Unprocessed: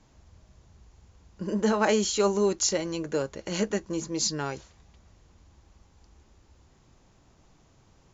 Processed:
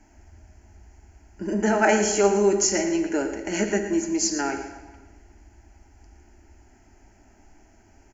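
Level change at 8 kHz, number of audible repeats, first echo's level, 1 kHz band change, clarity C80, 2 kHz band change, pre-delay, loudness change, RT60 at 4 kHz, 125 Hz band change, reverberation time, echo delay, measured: no reading, 1, -12.0 dB, +5.5 dB, 8.0 dB, +7.5 dB, 6 ms, +4.5 dB, 1.0 s, +0.5 dB, 1.3 s, 114 ms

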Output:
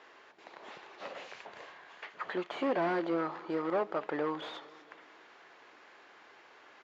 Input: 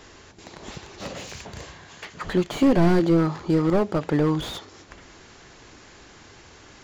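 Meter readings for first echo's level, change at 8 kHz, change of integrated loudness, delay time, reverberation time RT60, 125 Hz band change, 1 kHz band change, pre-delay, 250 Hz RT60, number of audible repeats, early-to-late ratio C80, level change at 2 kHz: -22.0 dB, no reading, -13.0 dB, 226 ms, no reverb, -25.5 dB, -5.0 dB, no reverb, no reverb, 3, no reverb, -5.5 dB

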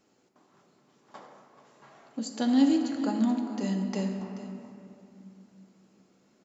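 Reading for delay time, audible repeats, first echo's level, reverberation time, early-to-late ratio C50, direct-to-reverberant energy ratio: 432 ms, 1, -14.5 dB, 2.8 s, 4.5 dB, 2.0 dB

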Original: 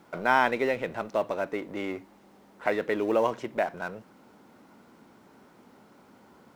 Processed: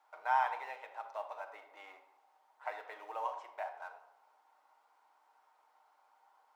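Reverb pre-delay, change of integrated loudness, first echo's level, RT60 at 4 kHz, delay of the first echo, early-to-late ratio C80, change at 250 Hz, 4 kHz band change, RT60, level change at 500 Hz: 6 ms, -11.0 dB, no echo, 0.55 s, no echo, 12.0 dB, -37.5 dB, -15.5 dB, 0.90 s, -19.0 dB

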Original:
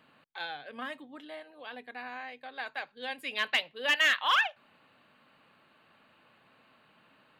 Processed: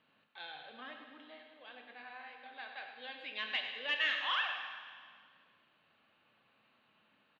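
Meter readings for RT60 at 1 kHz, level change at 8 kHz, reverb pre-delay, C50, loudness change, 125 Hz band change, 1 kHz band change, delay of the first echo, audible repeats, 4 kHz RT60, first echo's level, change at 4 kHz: 1.9 s, under -20 dB, 6 ms, 3.5 dB, -7.0 dB, no reading, -9.0 dB, 102 ms, 1, 1.8 s, -10.0 dB, -5.5 dB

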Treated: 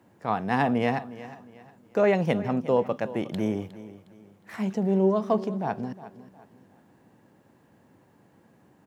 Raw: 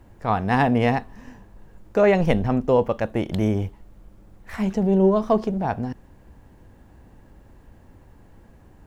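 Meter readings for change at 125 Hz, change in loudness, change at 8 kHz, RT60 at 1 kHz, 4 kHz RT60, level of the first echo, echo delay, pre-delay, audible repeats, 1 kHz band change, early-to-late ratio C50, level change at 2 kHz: -7.0 dB, -4.5 dB, no reading, no reverb, no reverb, -16.0 dB, 360 ms, no reverb, 3, -4.5 dB, no reverb, -4.5 dB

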